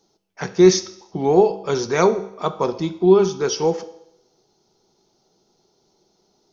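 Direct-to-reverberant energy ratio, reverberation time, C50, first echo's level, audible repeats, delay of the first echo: 10.5 dB, 0.75 s, 14.5 dB, no echo audible, no echo audible, no echo audible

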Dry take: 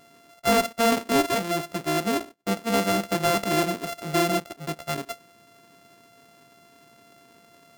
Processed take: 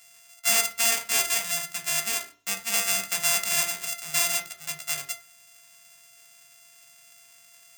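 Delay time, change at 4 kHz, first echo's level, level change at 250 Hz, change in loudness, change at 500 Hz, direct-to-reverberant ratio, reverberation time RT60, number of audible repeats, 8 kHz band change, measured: no echo audible, +3.0 dB, no echo audible, −21.5 dB, +0.5 dB, −14.0 dB, 5.5 dB, 0.40 s, no echo audible, +10.5 dB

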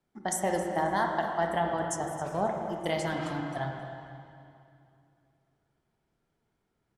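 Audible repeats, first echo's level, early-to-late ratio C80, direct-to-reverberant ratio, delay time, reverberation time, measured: 1, −15.0 dB, 3.5 dB, 1.5 dB, 267 ms, 2.6 s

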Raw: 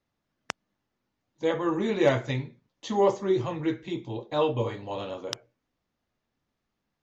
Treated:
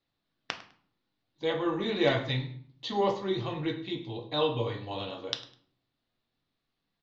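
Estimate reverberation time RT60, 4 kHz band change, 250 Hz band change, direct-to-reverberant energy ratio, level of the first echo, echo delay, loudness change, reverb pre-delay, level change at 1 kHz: 0.55 s, +5.0 dB, −3.5 dB, 4.5 dB, −17.5 dB, 102 ms, −3.5 dB, 3 ms, −2.5 dB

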